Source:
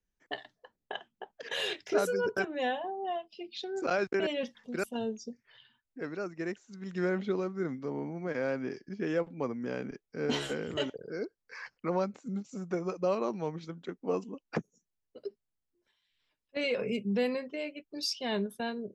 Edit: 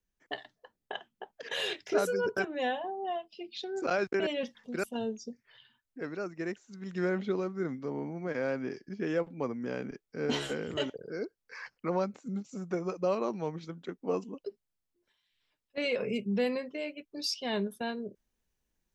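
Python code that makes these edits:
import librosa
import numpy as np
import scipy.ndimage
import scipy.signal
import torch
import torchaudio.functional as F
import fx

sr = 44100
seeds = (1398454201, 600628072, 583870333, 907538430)

y = fx.edit(x, sr, fx.cut(start_s=14.44, length_s=0.79), tone=tone)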